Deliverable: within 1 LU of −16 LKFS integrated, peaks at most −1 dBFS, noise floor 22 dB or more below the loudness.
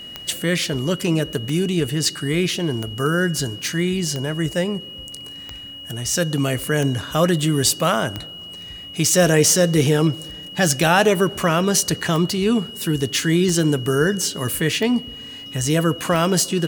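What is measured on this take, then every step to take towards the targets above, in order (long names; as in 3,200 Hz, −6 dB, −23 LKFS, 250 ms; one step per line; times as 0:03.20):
number of clicks 13; interfering tone 2,900 Hz; level of the tone −34 dBFS; integrated loudness −19.5 LKFS; sample peak −3.5 dBFS; target loudness −16.0 LKFS
→ click removal
notch filter 2,900 Hz, Q 30
level +3.5 dB
brickwall limiter −1 dBFS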